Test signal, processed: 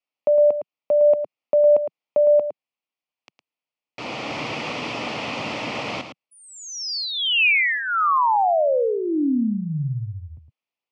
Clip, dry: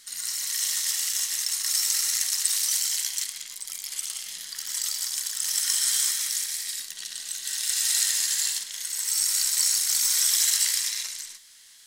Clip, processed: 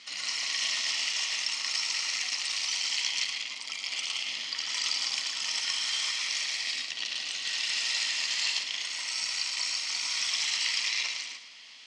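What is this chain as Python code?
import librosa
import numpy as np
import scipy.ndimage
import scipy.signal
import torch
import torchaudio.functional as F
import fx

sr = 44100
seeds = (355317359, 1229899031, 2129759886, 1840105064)

y = fx.peak_eq(x, sr, hz=1600.0, db=-15.0, octaves=0.36)
y = fx.rider(y, sr, range_db=3, speed_s=0.5)
y = fx.cabinet(y, sr, low_hz=150.0, low_slope=24, high_hz=4300.0, hz=(180.0, 380.0, 2500.0, 3800.0), db=(-10, -8, 5, -8))
y = y + 10.0 ** (-9.0 / 20.0) * np.pad(y, (int(110 * sr / 1000.0), 0))[:len(y)]
y = y * 10.0 ** (7.5 / 20.0)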